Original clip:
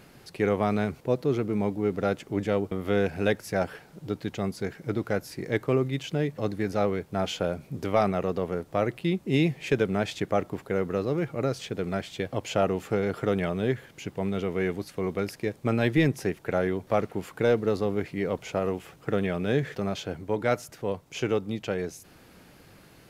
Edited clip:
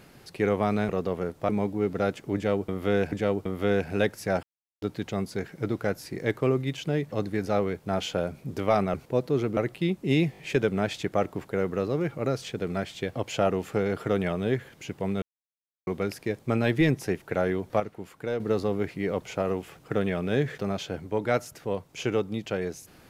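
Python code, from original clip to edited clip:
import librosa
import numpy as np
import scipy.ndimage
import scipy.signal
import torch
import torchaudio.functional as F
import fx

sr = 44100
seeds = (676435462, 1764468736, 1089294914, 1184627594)

y = fx.edit(x, sr, fx.swap(start_s=0.89, length_s=0.63, other_s=8.2, other_length_s=0.6),
    fx.repeat(start_s=2.38, length_s=0.77, count=2),
    fx.silence(start_s=3.69, length_s=0.39),
    fx.stutter(start_s=9.55, slice_s=0.02, count=4),
    fx.silence(start_s=14.39, length_s=0.65),
    fx.clip_gain(start_s=16.97, length_s=0.6, db=-7.5), tone=tone)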